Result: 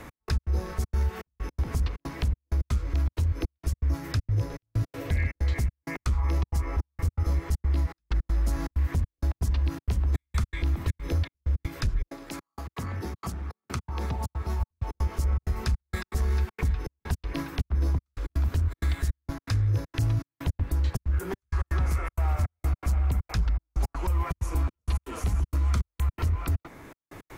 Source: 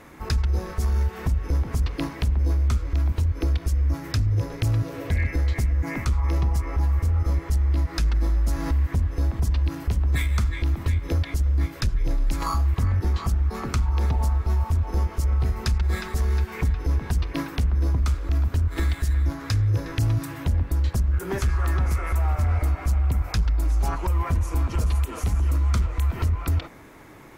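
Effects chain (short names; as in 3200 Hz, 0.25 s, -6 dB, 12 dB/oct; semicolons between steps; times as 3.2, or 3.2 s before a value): step gate "x..x.xxxx.xx" 161 bpm -60 dB; 12.06–14.59 HPF 280 Hz -> 92 Hz 12 dB/oct; three-band squash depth 40%; gain -3 dB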